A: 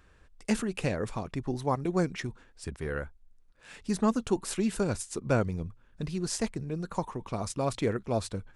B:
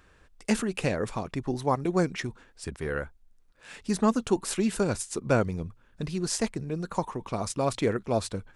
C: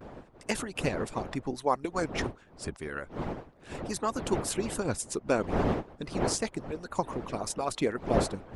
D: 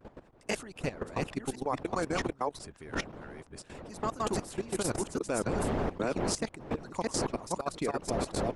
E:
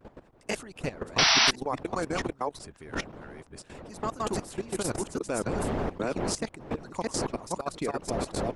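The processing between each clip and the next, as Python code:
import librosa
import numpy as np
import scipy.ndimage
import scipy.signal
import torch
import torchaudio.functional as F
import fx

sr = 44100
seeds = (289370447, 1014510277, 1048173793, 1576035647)

y1 = fx.low_shelf(x, sr, hz=140.0, db=-5.0)
y1 = F.gain(torch.from_numpy(y1), 3.5).numpy()
y2 = fx.dmg_wind(y1, sr, seeds[0], corner_hz=540.0, level_db=-33.0)
y2 = fx.vibrato(y2, sr, rate_hz=0.3, depth_cents=23.0)
y2 = fx.hpss(y2, sr, part='harmonic', gain_db=-17)
y3 = fx.reverse_delay(y2, sr, ms=519, wet_db=-0.5)
y3 = fx.level_steps(y3, sr, step_db=15)
y4 = fx.spec_paint(y3, sr, seeds[1], shape='noise', start_s=1.18, length_s=0.33, low_hz=620.0, high_hz=6000.0, level_db=-22.0)
y4 = F.gain(torch.from_numpy(y4), 1.0).numpy()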